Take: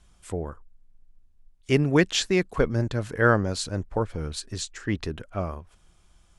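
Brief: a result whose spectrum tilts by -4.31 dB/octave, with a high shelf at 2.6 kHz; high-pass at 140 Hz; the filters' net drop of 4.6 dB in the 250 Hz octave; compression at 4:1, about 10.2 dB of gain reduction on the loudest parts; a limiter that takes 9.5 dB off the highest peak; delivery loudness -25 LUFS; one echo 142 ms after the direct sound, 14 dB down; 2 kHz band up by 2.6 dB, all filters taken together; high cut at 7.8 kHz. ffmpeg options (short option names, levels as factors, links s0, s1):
-af "highpass=140,lowpass=7800,equalizer=f=250:t=o:g=-6,equalizer=f=2000:t=o:g=5,highshelf=f=2600:g=-3.5,acompressor=threshold=0.0501:ratio=4,alimiter=limit=0.0708:level=0:latency=1,aecho=1:1:142:0.2,volume=3.55"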